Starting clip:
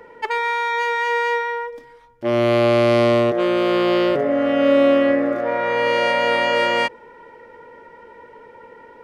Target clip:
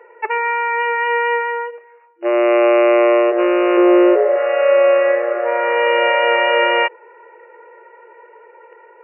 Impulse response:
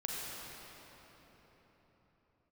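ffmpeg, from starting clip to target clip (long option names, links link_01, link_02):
-filter_complex "[0:a]asettb=1/sr,asplit=3[link_01][link_02][link_03];[link_01]atrim=end=3.774[link_04];[link_02]atrim=start=3.77:end=4.36,asetpts=PTS-STARTPTS,afade=type=in:duration=0.004:curve=qsin,afade=type=out:start_time=0.586:duration=0.004:curve=qsin,aemphasis=mode=reproduction:type=riaa[link_05];[link_03]atrim=start=4.356[link_06];[link_04][link_05]acrossfade=duration=0.004:curve1=hsin:curve2=qsin[link_07];[link_07][link_06]acrossfade=duration=0.004:curve1=qsin:curve2=hsin,asplit=2[link_08][link_09];[link_09]acrusher=bits=4:mix=0:aa=0.5,volume=-5.5dB[link_10];[link_08][link_10]amix=inputs=2:normalize=0,dynaudnorm=framelen=850:gausssize=5:maxgain=11.5dB,afftfilt=real='re*between(b*sr/4096,340,2900)':imag='im*between(b*sr/4096,340,2900)':win_size=4096:overlap=0.75,volume=-1dB"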